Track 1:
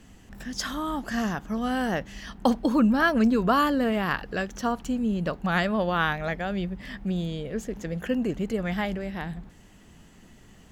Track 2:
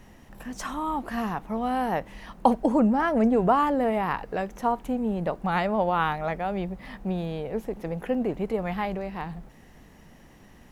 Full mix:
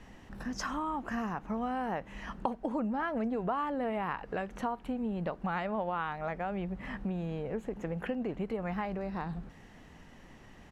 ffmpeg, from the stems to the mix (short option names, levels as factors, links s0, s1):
-filter_complex "[0:a]volume=0.562[s0];[1:a]tiltshelf=f=700:g=-3.5,adelay=0.4,volume=0.75,asplit=2[s1][s2];[s2]apad=whole_len=472574[s3];[s0][s3]sidechaincompress=threshold=0.0282:ratio=8:attack=16:release=672[s4];[s4][s1]amix=inputs=2:normalize=0,aemphasis=mode=reproduction:type=50fm,acompressor=threshold=0.0224:ratio=3"